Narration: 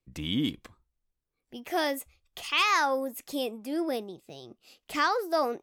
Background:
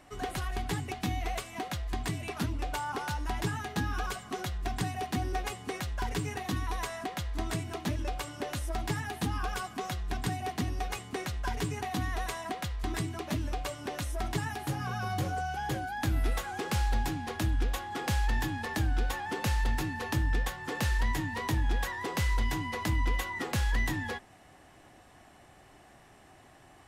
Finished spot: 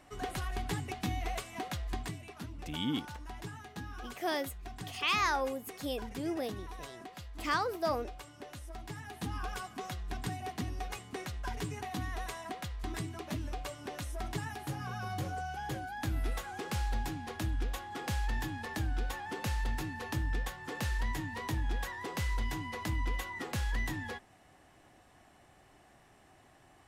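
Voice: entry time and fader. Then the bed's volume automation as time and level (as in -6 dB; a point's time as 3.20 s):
2.50 s, -5.5 dB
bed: 1.93 s -2.5 dB
2.28 s -11.5 dB
8.90 s -11.5 dB
9.35 s -5 dB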